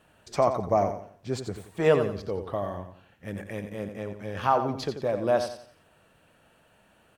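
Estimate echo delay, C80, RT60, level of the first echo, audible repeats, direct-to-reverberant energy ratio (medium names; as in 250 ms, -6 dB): 88 ms, no reverb, no reverb, -9.0 dB, 3, no reverb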